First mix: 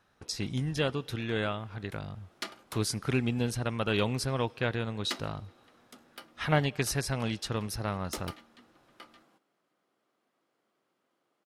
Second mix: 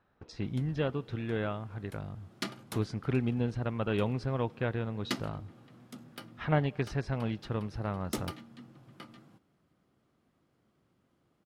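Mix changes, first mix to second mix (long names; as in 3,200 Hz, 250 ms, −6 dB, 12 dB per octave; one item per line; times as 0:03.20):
speech: add head-to-tape spacing loss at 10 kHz 31 dB
background: remove high-pass filter 430 Hz 12 dB per octave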